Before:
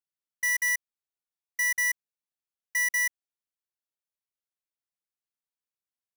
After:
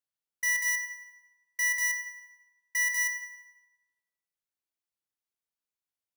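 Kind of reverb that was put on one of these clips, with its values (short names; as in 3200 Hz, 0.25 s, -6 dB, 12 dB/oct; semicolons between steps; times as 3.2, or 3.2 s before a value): FDN reverb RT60 1.1 s, low-frequency decay 1.05×, high-frequency decay 0.75×, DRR 7 dB; gain -2 dB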